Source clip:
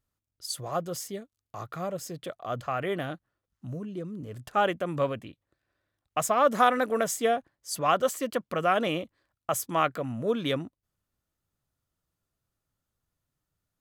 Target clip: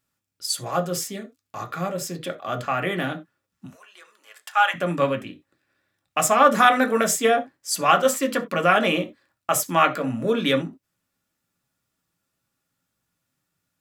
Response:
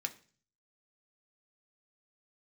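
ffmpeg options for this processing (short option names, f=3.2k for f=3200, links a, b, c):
-filter_complex "[0:a]asettb=1/sr,asplit=3[a][b][c];[a]atrim=end=3.664[d];[b]atrim=start=3.66:end=4.74,asetpts=PTS-STARTPTS,afade=t=in:d=0.004:c=qsin,afade=t=out:st=1.076:d=0.004:c=qsin,highpass=f=850:w=0.5412,highpass=f=850:w=1.3066[e];[c]atrim=start=4.736[f];[d][e]acrossfade=d=0.004:c1=hsin:c2=qsin[g];[g][f]acrossfade=d=0.004:c1=qsin:c2=hsin[h];[1:a]atrim=start_sample=2205,atrim=end_sample=4410[i];[h][i]afir=irnorm=-1:irlink=0,volume=8.5dB"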